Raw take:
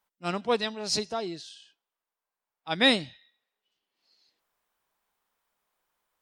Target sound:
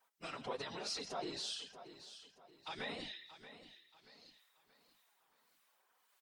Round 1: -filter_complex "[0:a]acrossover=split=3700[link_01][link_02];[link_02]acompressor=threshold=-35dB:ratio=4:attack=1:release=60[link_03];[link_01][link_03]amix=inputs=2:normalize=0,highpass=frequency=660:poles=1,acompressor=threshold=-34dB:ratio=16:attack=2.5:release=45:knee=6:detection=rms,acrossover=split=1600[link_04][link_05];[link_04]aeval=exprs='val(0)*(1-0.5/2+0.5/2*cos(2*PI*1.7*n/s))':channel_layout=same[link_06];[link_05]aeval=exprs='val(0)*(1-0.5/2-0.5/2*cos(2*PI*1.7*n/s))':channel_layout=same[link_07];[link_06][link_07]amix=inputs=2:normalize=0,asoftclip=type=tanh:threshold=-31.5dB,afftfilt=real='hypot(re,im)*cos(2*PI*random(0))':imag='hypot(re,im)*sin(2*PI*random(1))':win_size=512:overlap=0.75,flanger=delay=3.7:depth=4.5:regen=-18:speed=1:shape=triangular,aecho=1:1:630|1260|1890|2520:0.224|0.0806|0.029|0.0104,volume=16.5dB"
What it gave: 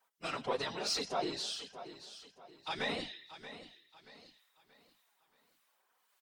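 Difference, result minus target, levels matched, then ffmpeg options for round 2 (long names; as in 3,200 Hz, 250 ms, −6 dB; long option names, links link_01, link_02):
downward compressor: peak gain reduction −8.5 dB
-filter_complex "[0:a]acrossover=split=3700[link_01][link_02];[link_02]acompressor=threshold=-35dB:ratio=4:attack=1:release=60[link_03];[link_01][link_03]amix=inputs=2:normalize=0,highpass=frequency=660:poles=1,acompressor=threshold=-43dB:ratio=16:attack=2.5:release=45:knee=6:detection=rms,acrossover=split=1600[link_04][link_05];[link_04]aeval=exprs='val(0)*(1-0.5/2+0.5/2*cos(2*PI*1.7*n/s))':channel_layout=same[link_06];[link_05]aeval=exprs='val(0)*(1-0.5/2-0.5/2*cos(2*PI*1.7*n/s))':channel_layout=same[link_07];[link_06][link_07]amix=inputs=2:normalize=0,asoftclip=type=tanh:threshold=-31.5dB,afftfilt=real='hypot(re,im)*cos(2*PI*random(0))':imag='hypot(re,im)*sin(2*PI*random(1))':win_size=512:overlap=0.75,flanger=delay=3.7:depth=4.5:regen=-18:speed=1:shape=triangular,aecho=1:1:630|1260|1890|2520:0.224|0.0806|0.029|0.0104,volume=16.5dB"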